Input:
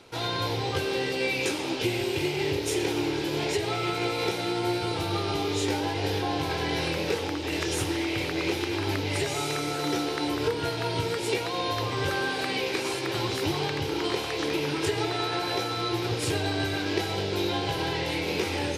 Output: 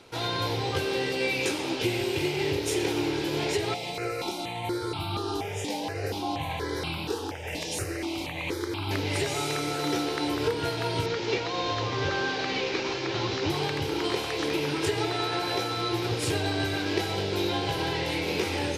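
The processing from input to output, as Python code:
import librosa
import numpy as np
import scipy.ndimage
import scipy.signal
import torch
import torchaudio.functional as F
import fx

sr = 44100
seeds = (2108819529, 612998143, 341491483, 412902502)

y = fx.phaser_held(x, sr, hz=4.2, low_hz=370.0, high_hz=1800.0, at=(3.74, 8.91))
y = fx.cvsd(y, sr, bps=32000, at=(11.06, 13.5))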